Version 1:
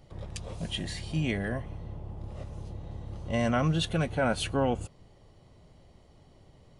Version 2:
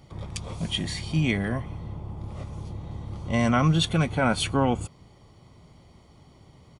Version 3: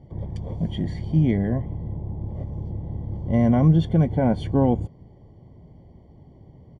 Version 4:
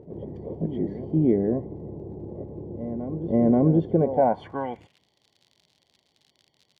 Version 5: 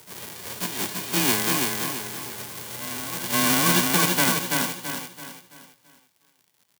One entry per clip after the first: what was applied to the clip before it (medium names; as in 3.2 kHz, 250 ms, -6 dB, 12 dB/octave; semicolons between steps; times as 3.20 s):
high-pass 91 Hz 6 dB/octave; comb 0.9 ms, depth 38%; trim +5 dB
boxcar filter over 34 samples; trim +5.5 dB
crackle 68 per s -43 dBFS; reverse echo 531 ms -13 dB; band-pass sweep 390 Hz -> 3.9 kHz, 3.93–5.07 s; trim +8 dB
formants flattened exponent 0.1; frequency shift +18 Hz; on a send: feedback delay 333 ms, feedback 39%, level -3.5 dB; on the sum: trim -2 dB